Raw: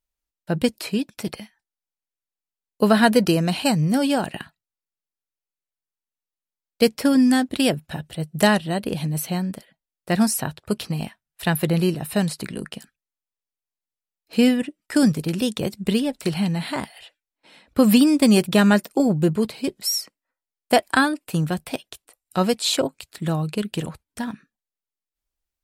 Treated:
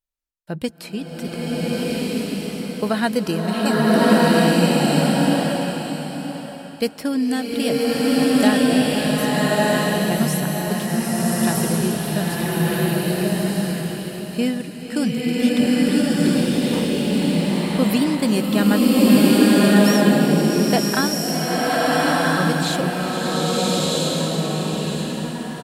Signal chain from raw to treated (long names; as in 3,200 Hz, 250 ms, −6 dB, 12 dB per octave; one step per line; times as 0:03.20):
single-tap delay 969 ms −10.5 dB
slow-attack reverb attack 1,330 ms, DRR −8 dB
level −5 dB